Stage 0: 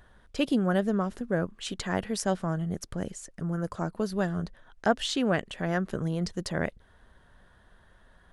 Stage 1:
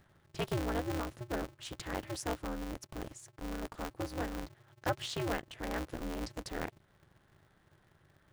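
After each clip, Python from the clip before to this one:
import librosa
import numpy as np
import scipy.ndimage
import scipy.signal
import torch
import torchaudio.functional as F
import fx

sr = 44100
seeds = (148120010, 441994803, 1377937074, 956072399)

y = x * np.sign(np.sin(2.0 * np.pi * 120.0 * np.arange(len(x)) / sr))
y = y * 10.0 ** (-9.0 / 20.0)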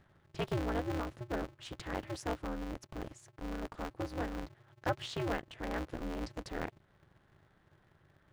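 y = fx.high_shelf(x, sr, hz=6300.0, db=-11.5)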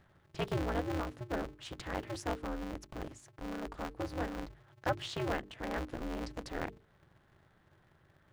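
y = fx.hum_notches(x, sr, base_hz=50, count=9)
y = y * 10.0 ** (1.0 / 20.0)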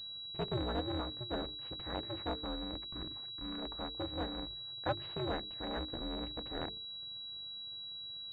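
y = fx.spec_box(x, sr, start_s=2.85, length_s=0.73, low_hz=400.0, high_hz=940.0, gain_db=-9)
y = fx.pwm(y, sr, carrier_hz=3900.0)
y = y * 10.0 ** (-2.0 / 20.0)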